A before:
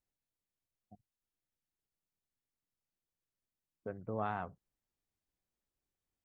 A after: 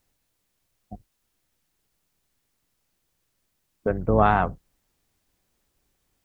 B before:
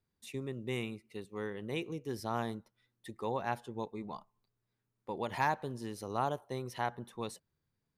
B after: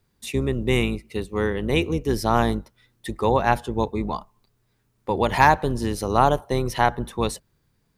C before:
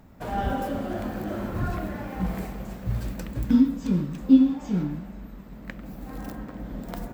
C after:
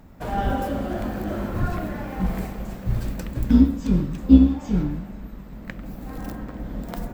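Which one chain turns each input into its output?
octave divider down 2 oct, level -4 dB; normalise loudness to -23 LUFS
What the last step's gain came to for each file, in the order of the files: +18.0 dB, +15.5 dB, +2.5 dB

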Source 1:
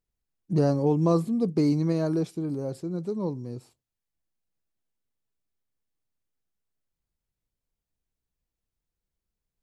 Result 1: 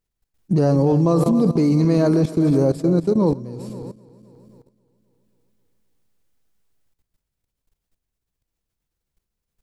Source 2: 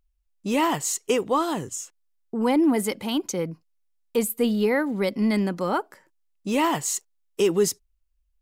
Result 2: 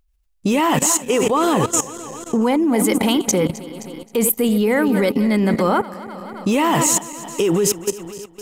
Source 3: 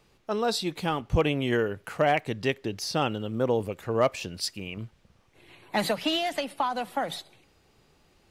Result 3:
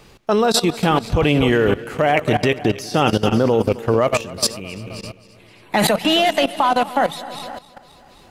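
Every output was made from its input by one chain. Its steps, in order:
backward echo that repeats 132 ms, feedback 72%, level -13 dB; dynamic bell 4.6 kHz, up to -5 dB, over -48 dBFS, Q 3.2; level held to a coarse grid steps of 16 dB; normalise loudness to -18 LUFS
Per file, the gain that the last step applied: +16.0 dB, +16.0 dB, +17.0 dB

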